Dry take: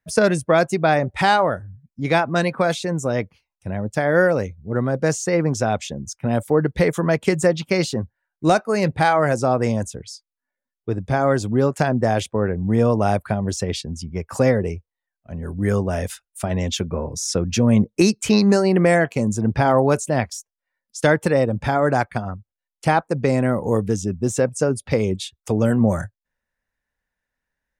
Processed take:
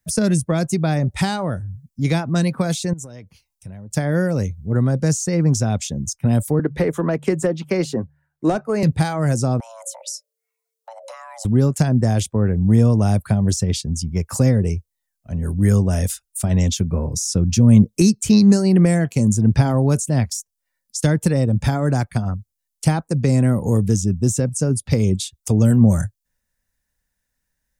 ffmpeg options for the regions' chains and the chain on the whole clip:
ffmpeg -i in.wav -filter_complex "[0:a]asettb=1/sr,asplit=3[link_01][link_02][link_03];[link_01]atrim=end=2.934[link_04];[link_02]atrim=start=2.93:end=3.91,asetpts=PTS-STARTPTS,afade=type=in:duration=0.004:curve=qsin,afade=type=out:start_time=0.976:duration=0.004:curve=qsin,bandreject=frequency=1200:width=22,acompressor=threshold=-39dB:ratio=5:attack=3.2:release=140:knee=1:detection=peak[link_05];[link_03]atrim=start=3.906[link_06];[link_04][link_05]acrossfade=duration=0.004:curve1=hsin:curve2=qsin[link_07];[link_07][link_06]acrossfade=duration=0.004:curve1=qsin:curve2=hsin,asettb=1/sr,asplit=3[link_08][link_09][link_10];[link_08]atrim=end=6.594[link_11];[link_09]atrim=start=6.59:end=8.83,asetpts=PTS-STARTPTS,afade=type=in:duration=0.004:curve=qsin,afade=type=out:start_time=2.236:duration=0.004:curve=qsin,acrossover=split=280 2200:gain=0.126 1 0.141[link_12][link_13][link_14];[link_12][link_13][link_14]amix=inputs=3:normalize=0,bandreject=frequency=73.22:width_type=h:width=4,bandreject=frequency=146.44:width_type=h:width=4,acontrast=71[link_15];[link_10]atrim=start=8.826[link_16];[link_11][link_15]acrossfade=duration=0.004:curve1=hsin:curve2=qsin[link_17];[link_17][link_16]acrossfade=duration=0.004:curve1=qsin:curve2=hsin,asettb=1/sr,asplit=3[link_18][link_19][link_20];[link_18]atrim=end=9.604[link_21];[link_19]atrim=start=9.6:end=11.45,asetpts=PTS-STARTPTS,afade=type=in:duration=0.004:curve=qsin,afade=type=out:start_time=1.846:duration=0.004:curve=qsin,bandreject=frequency=50:width_type=h:width=6,bandreject=frequency=100:width_type=h:width=6,bandreject=frequency=150:width_type=h:width=6,acompressor=threshold=-33dB:ratio=16:attack=3.2:release=140:knee=1:detection=peak,afreqshift=450[link_22];[link_20]atrim=start=11.446[link_23];[link_21][link_22]acrossfade=duration=0.004:curve1=hsin:curve2=qsin[link_24];[link_24][link_23]acrossfade=duration=0.004:curve1=qsin:curve2=hsin,bass=frequency=250:gain=9,treble=frequency=4000:gain=15,acrossover=split=330[link_25][link_26];[link_26]acompressor=threshold=-26dB:ratio=2.5[link_27];[link_25][link_27]amix=inputs=2:normalize=0,volume=-1dB" out.wav

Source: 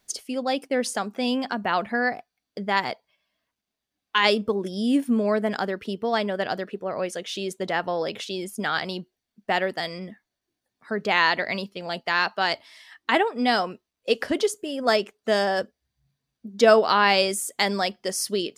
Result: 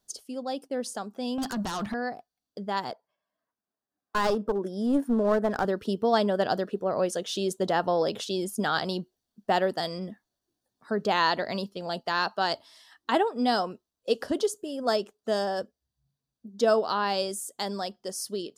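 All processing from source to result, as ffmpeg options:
ffmpeg -i in.wav -filter_complex "[0:a]asettb=1/sr,asplit=3[link_01][link_02][link_03];[link_01]atrim=end=1.384[link_04];[link_02]atrim=start=1.38:end=1.94,asetpts=PTS-STARTPTS,afade=type=in:duration=0.004:curve=qsin,afade=type=out:start_time=0.556:duration=0.004:curve=qsin,equalizer=frequency=560:width=1.3:gain=-12.5,acompressor=threshold=-29dB:ratio=4:attack=3.2:release=140:knee=1:detection=peak,aeval=exprs='0.1*sin(PI/2*3.55*val(0)/0.1)':channel_layout=same[link_05];[link_03]atrim=start=1.936[link_06];[link_04][link_05]acrossfade=duration=0.004:curve1=hsin:curve2=qsin[link_07];[link_07][link_06]acrossfade=duration=0.004:curve1=qsin:curve2=hsin,asettb=1/sr,asplit=3[link_08][link_09][link_10];[link_08]atrim=end=2.914[link_11];[link_09]atrim=start=2.91:end=5.65,asetpts=PTS-STARTPTS,afade=type=in:duration=0.004:curve=qsin,afade=type=out:start_time=2.736:duration=0.004:curve=qsin,highpass=frequency=250:poles=1,highshelf=frequency=2400:width_type=q:width=1.5:gain=-8.5,aeval=exprs='clip(val(0),-1,0.0531)':channel_layout=same[link_12];[link_10]atrim=start=5.646[link_13];[link_11][link_12]acrossfade=duration=0.004:curve1=hsin:curve2=qsin[link_14];[link_14][link_13]acrossfade=duration=0.004:curve1=qsin:curve2=hsin,equalizer=frequency=2200:width_type=o:width=0.69:gain=-14,dynaudnorm=framelen=490:gausssize=17:maxgain=11.5dB,volume=-6.5dB" out.wav

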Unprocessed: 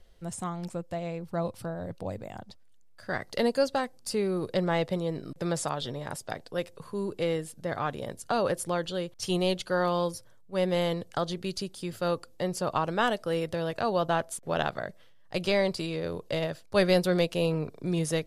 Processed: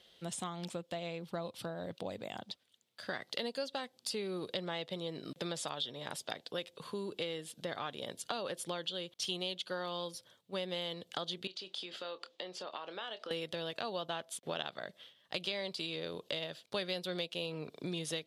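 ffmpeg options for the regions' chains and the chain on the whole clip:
ffmpeg -i in.wav -filter_complex "[0:a]asettb=1/sr,asplit=3[link_01][link_02][link_03];[link_01]atrim=end=11.474[link_04];[link_02]atrim=start=11.47:end=13.31,asetpts=PTS-STARTPTS,afade=type=in:duration=0.004:curve=qsin,afade=type=out:start_time=1.836:duration=0.004:curve=qsin,acompressor=threshold=-38dB:ratio=6:attack=3.2:release=140:knee=1:detection=peak,highpass=370,lowpass=4500,asplit=2[link_05][link_06];[link_06]adelay=27,volume=-12dB[link_07];[link_05][link_07]amix=inputs=2:normalize=0,atrim=end_sample=81144[link_08];[link_03]atrim=start=13.306[link_09];[link_04][link_08]acrossfade=duration=0.004:curve1=hsin:curve2=qsin[link_10];[link_10][link_09]acrossfade=duration=0.004:curve1=qsin:curve2=hsin,highpass=180,equalizer=frequency=3400:width=1.6:gain=14.5,acompressor=threshold=-36dB:ratio=4,volume=-1dB" out.wav

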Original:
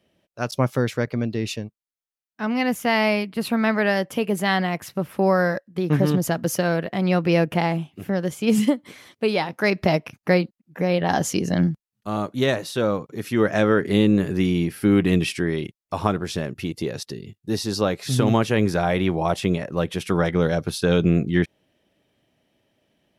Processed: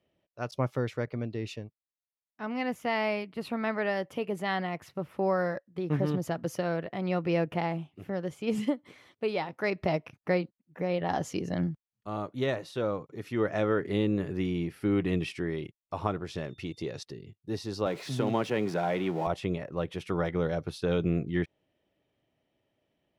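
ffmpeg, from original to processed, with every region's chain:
ffmpeg -i in.wav -filter_complex "[0:a]asettb=1/sr,asplit=3[link_01][link_02][link_03];[link_01]atrim=end=16.354[link_04];[link_02]atrim=start=16.35:end=17.04,asetpts=PTS-STARTPTS,afade=type=in:duration=0.004:curve=qsin,afade=type=out:start_time=0.686:duration=0.004:curve=qsin,lowpass=8000,highshelf=frequency=4000:gain=8.5,aeval=exprs='val(0)+0.00282*sin(2*PI*3600*n/s)':channel_layout=same[link_05];[link_03]atrim=start=17.036[link_06];[link_04][link_05]acrossfade=duration=0.004:curve1=hsin:curve2=qsin[link_07];[link_07][link_06]acrossfade=duration=0.004:curve1=qsin:curve2=hsin,asettb=1/sr,asplit=3[link_08][link_09][link_10];[link_08]atrim=end=17.864[link_11];[link_09]atrim=start=17.86:end=19.27,asetpts=PTS-STARTPTS,afade=type=in:duration=0.004:curve=qsin,afade=type=out:start_time=1.406:duration=0.004:curve=qsin,aeval=exprs='val(0)+0.5*0.0316*sgn(val(0))':channel_layout=same,highpass=frequency=140:width=0.5412,highpass=frequency=140:width=1.3066,bandreject=frequency=1200:width=15[link_12];[link_10]atrim=start=19.266[link_13];[link_11][link_12]acrossfade=duration=0.004:curve1=hsin:curve2=qsin[link_14];[link_14][link_13]acrossfade=duration=0.004:curve1=qsin:curve2=hsin,lowpass=frequency=2600:poles=1,equalizer=frequency=210:width_type=o:width=0.55:gain=-5,bandreject=frequency=1600:width=16,volume=-7.5dB" out.wav

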